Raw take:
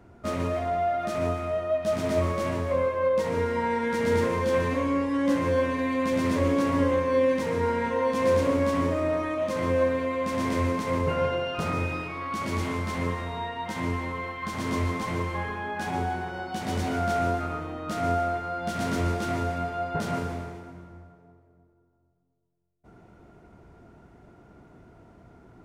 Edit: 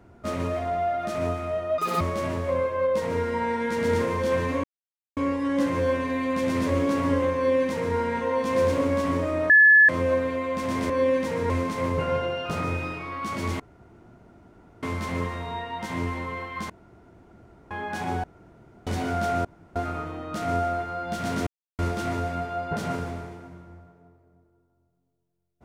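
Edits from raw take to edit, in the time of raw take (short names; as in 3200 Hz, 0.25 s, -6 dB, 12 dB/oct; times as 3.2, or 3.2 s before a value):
1.78–2.23 speed 198%
4.86 insert silence 0.53 s
7.05–7.65 copy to 10.59
9.19–9.58 bleep 1720 Hz -11 dBFS
12.69 insert room tone 1.23 s
14.56–15.57 room tone
16.1–16.73 room tone
17.31 insert room tone 0.31 s
19.02 insert silence 0.32 s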